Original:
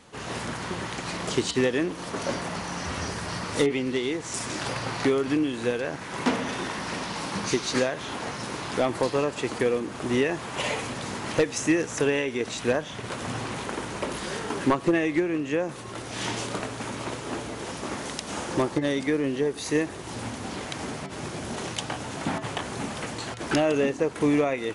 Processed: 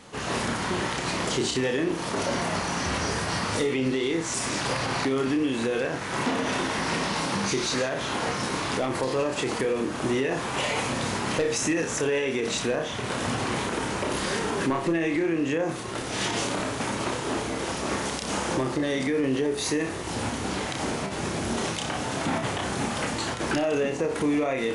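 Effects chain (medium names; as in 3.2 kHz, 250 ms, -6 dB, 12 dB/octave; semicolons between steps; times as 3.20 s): flutter echo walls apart 5.2 m, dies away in 0.28 s; peak limiter -21.5 dBFS, peak gain reduction 11 dB; trim +4 dB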